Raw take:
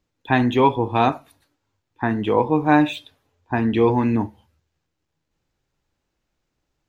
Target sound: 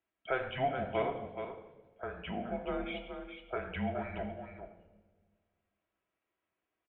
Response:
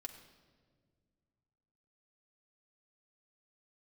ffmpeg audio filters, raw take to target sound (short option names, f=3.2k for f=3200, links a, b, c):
-filter_complex "[0:a]highpass=280,acompressor=threshold=-26dB:ratio=2,asettb=1/sr,asplit=3[a][b][c];[a]atrim=end=1.024[d];[b]atrim=start=1.02:end=3.56,asetpts=PTS-STARTPTS,afade=t=in:d=0.004:c=qsin,afade=t=out:st=2.536:d=0.004:c=qsin,acrossover=split=470[e][f];[e]aeval=exprs='val(0)*(1-0.5/2+0.5/2*cos(2*PI*2.9*n/s))':c=same[g];[f]aeval=exprs='val(0)*(1-0.5/2-0.5/2*cos(2*PI*2.9*n/s))':c=same[h];[g][h]amix=inputs=2:normalize=0[i];[c]atrim=start=3.556[j];[d][i]acrossfade=d=0.004:c1=hsin:c2=qsin[k];[k][j]acrossfade=d=0.004:c1=qsin:c2=hsin,aecho=1:1:422:0.398[l];[1:a]atrim=start_sample=2205,asetrate=52920,aresample=44100[m];[l][m]afir=irnorm=-1:irlink=0,highpass=f=480:t=q:w=0.5412,highpass=f=480:t=q:w=1.307,lowpass=f=3.3k:t=q:w=0.5176,lowpass=f=3.3k:t=q:w=0.7071,lowpass=f=3.3k:t=q:w=1.932,afreqshift=-260"